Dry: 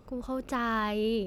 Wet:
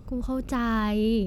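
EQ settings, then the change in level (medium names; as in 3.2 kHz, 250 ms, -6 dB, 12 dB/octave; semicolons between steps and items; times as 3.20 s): tone controls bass +13 dB, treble +4 dB; 0.0 dB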